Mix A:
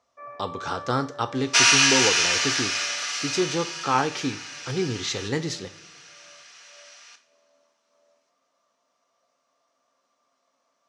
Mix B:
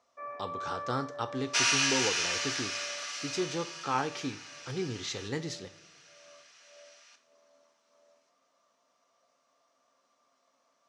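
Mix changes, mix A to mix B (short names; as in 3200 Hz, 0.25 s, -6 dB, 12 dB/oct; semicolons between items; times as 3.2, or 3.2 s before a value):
speech -8.0 dB; second sound -9.5 dB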